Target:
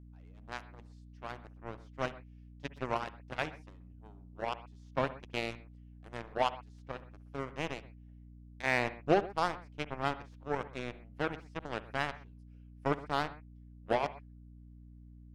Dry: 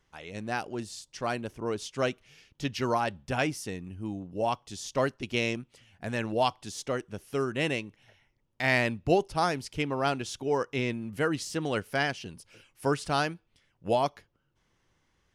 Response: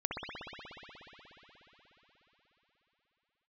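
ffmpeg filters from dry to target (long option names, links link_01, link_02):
-filter_complex "[0:a]aeval=exprs='0.282*(cos(1*acos(clip(val(0)/0.282,-1,1)))-cos(1*PI/2))+0.0447*(cos(7*acos(clip(val(0)/0.282,-1,1)))-cos(7*PI/2))':channel_layout=same,aemphasis=mode=reproduction:type=75fm,asplit=2[link_01][link_02];[1:a]atrim=start_sample=2205,atrim=end_sample=6174[link_03];[link_02][link_03]afir=irnorm=-1:irlink=0,volume=-14dB[link_04];[link_01][link_04]amix=inputs=2:normalize=0,aeval=exprs='val(0)+0.00447*(sin(2*PI*60*n/s)+sin(2*PI*2*60*n/s)/2+sin(2*PI*3*60*n/s)/3+sin(2*PI*4*60*n/s)/4+sin(2*PI*5*60*n/s)/5)':channel_layout=same,volume=-4.5dB"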